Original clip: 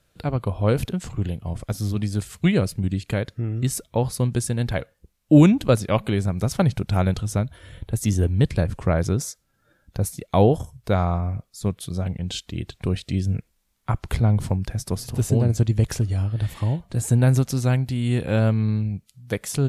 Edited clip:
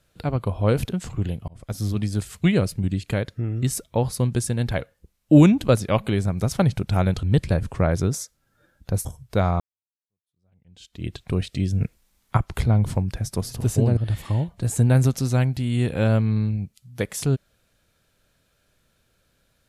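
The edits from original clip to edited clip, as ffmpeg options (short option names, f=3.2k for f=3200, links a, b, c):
-filter_complex "[0:a]asplit=8[a][b][c][d][e][f][g][h];[a]atrim=end=1.48,asetpts=PTS-STARTPTS,afade=t=out:st=1.476:d=0.004:c=hsin[i];[b]atrim=start=1.48:end=7.232,asetpts=PTS-STARTPTS,afade=t=in:d=0.34[j];[c]atrim=start=8.298:end=10.122[k];[d]atrim=start=10.588:end=11.14,asetpts=PTS-STARTPTS,afade=t=out:st=0.548:d=0.004:c=hsin[l];[e]atrim=start=11.14:end=13.352,asetpts=PTS-STARTPTS,afade=t=in:d=1.46:c=exp[m];[f]atrim=start=13.348:end=13.912,asetpts=PTS-STARTPTS,volume=5.5dB[n];[g]atrim=start=13.908:end=15.512[o];[h]atrim=start=16.288[p];[i][j]concat=n=2:v=0:a=1[q];[q][k]acrossfade=d=0.004:c1=hsin:c2=hsin[r];[l][m]concat=n=2:v=0:a=1[s];[r][s]acrossfade=d=0.004:c1=hsin:c2=hsin[t];[t][n]acrossfade=d=0.004:c1=hsin:c2=hsin[u];[u][o]acrossfade=d=0.004:c1=hsin:c2=hsin[v];[v][p]acrossfade=d=0.004:c1=hsin:c2=hsin"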